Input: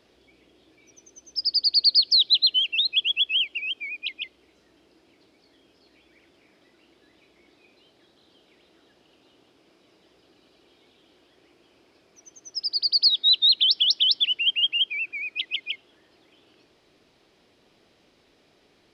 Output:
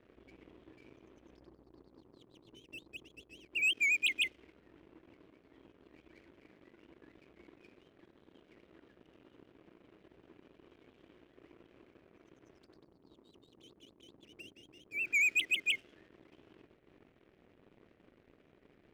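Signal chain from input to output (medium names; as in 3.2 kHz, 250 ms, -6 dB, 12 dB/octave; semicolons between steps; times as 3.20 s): low-pass that closes with the level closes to 540 Hz, closed at -21.5 dBFS; static phaser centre 2.3 kHz, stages 4; level-controlled noise filter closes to 1.4 kHz, open at -24.5 dBFS; waveshaping leveller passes 2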